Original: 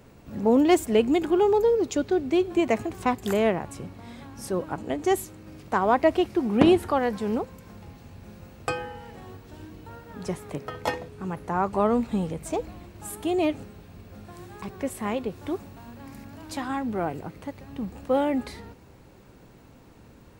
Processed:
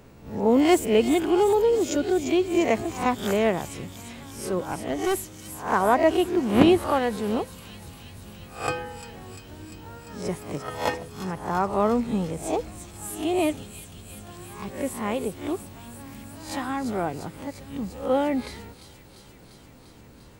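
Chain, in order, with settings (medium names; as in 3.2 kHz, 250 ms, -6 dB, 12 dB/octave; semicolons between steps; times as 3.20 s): reverse spectral sustain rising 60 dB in 0.40 s; 4.59–5.72 s: overload inside the chain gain 20.5 dB; on a send: feedback echo behind a high-pass 347 ms, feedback 76%, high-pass 4.1 kHz, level -6 dB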